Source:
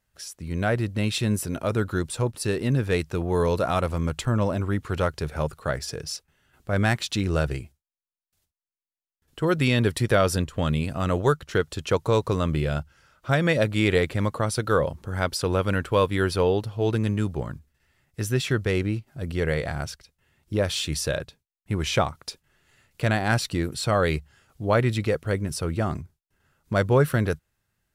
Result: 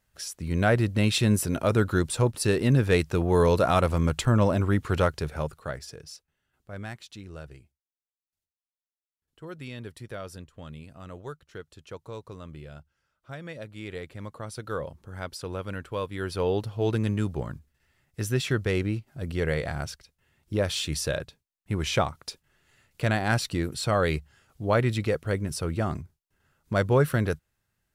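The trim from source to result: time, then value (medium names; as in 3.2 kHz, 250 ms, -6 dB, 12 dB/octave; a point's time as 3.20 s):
4.96 s +2 dB
5.98 s -10.5 dB
7.26 s -18 dB
13.72 s -18 dB
14.72 s -10.5 dB
16.13 s -10.5 dB
16.60 s -2 dB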